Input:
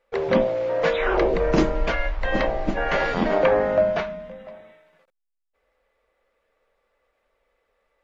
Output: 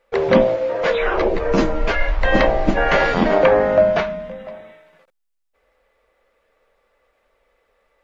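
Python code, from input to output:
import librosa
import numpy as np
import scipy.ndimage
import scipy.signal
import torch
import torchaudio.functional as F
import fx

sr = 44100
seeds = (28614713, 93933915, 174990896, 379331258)

p1 = fx.rider(x, sr, range_db=10, speed_s=0.5)
p2 = x + (p1 * librosa.db_to_amplitude(0.0))
y = fx.ensemble(p2, sr, at=(0.55, 2.07), fade=0.02)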